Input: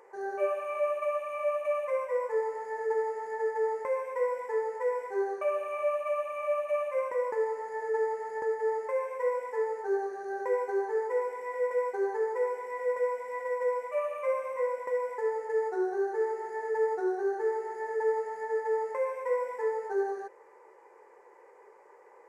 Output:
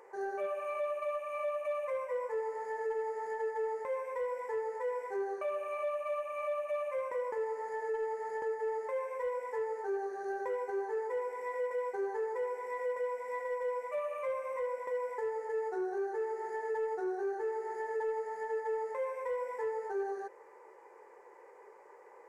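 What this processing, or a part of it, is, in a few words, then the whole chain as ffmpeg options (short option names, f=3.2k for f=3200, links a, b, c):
soft clipper into limiter: -af "asoftclip=type=tanh:threshold=-20dB,alimiter=level_in=5dB:limit=-24dB:level=0:latency=1:release=347,volume=-5dB"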